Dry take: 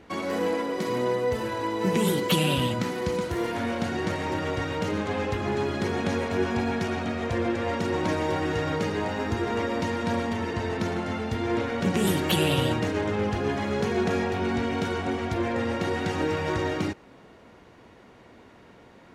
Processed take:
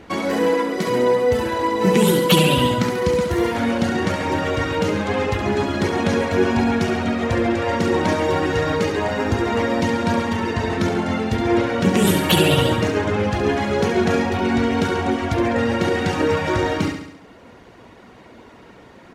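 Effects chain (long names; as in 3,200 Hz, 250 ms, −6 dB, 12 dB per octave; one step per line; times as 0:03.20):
reverb reduction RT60 0.75 s
repeating echo 69 ms, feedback 56%, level −7 dB
level +8 dB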